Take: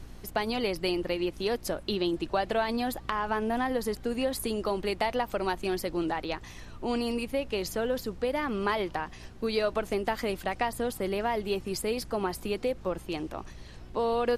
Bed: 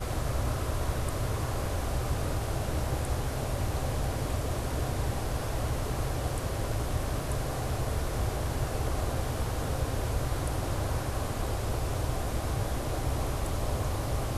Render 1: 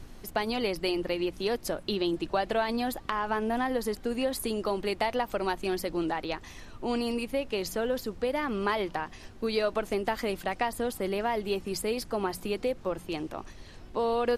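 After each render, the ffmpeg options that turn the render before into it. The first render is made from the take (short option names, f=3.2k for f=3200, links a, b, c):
-af "bandreject=f=60:t=h:w=4,bandreject=f=120:t=h:w=4,bandreject=f=180:t=h:w=4"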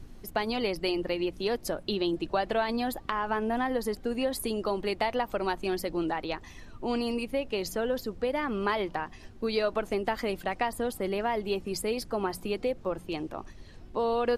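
-af "afftdn=nr=6:nf=-48"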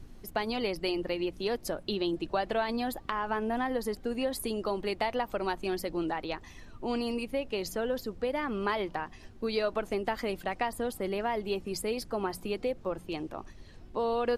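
-af "volume=-2dB"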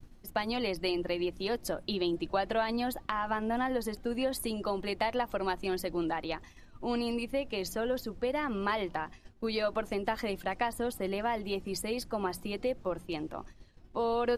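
-af "agate=range=-33dB:threshold=-41dB:ratio=3:detection=peak,bandreject=f=420:w=12"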